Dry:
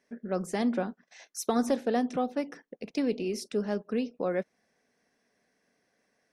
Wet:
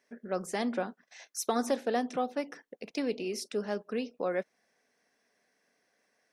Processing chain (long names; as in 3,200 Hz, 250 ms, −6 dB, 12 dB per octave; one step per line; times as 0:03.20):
low-shelf EQ 270 Hz −11.5 dB
level +1 dB